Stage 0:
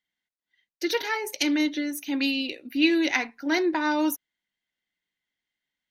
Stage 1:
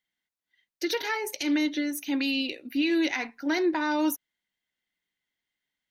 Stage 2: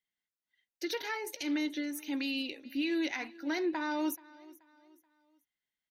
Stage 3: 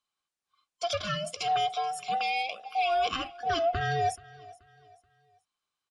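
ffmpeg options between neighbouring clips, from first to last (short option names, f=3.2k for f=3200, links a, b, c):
-af "alimiter=limit=-17.5dB:level=0:latency=1:release=97"
-af "aecho=1:1:430|860|1290:0.0841|0.032|0.0121,volume=-7dB"
-af "afftfilt=real='real(if(between(b,1,1008),(2*floor((b-1)/48)+1)*48-b,b),0)':imag='imag(if(between(b,1,1008),(2*floor((b-1)/48)+1)*48-b,b),0)*if(between(b,1,1008),-1,1)':win_size=2048:overlap=0.75,aresample=22050,aresample=44100,volume=5dB"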